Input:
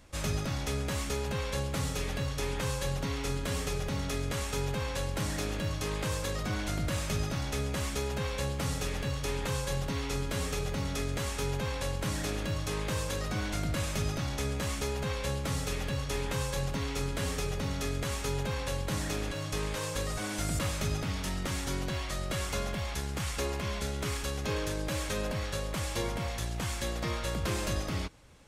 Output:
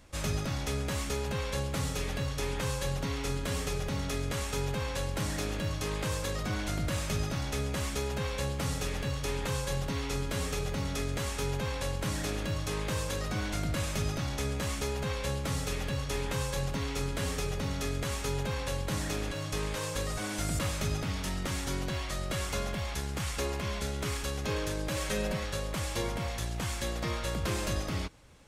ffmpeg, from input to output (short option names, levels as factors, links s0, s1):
-filter_complex "[0:a]asettb=1/sr,asplit=3[s0][s1][s2];[s0]atrim=end=24.964[s3];[s1]atrim=start=24.96:end=25.44,asetpts=PTS-STARTPTS,afade=t=in:d=0.004:c=qsin,afade=t=out:st=0.476:d=0.004:c=qsin,aecho=1:1:5.3:0.65,atrim=end_sample=21168[s4];[s2]atrim=start=25.436[s5];[s3][s4]acrossfade=d=0.004:c1=hsin:c2=qsin[s6];[s6][s5]acrossfade=d=0.004:c1=qsin:c2=hsin"